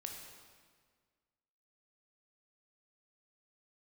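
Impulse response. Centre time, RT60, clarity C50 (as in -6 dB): 58 ms, 1.7 s, 3.5 dB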